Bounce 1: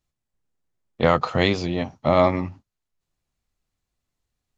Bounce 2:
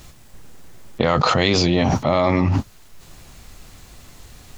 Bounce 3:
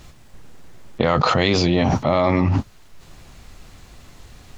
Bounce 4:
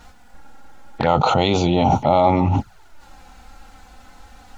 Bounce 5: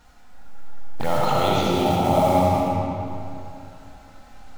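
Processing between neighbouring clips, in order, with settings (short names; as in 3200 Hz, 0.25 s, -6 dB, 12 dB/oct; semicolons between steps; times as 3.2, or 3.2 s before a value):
dynamic EQ 4800 Hz, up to +5 dB, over -41 dBFS, Q 0.88; fast leveller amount 100%; gain -3 dB
high shelf 7200 Hz -9.5 dB
small resonant body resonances 840/1400 Hz, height 14 dB, ringing for 20 ms; envelope flanger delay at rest 4.5 ms, full sweep at -12.5 dBFS
block floating point 5-bit; digital reverb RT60 2.8 s, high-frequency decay 0.7×, pre-delay 30 ms, DRR -4.5 dB; gain -8.5 dB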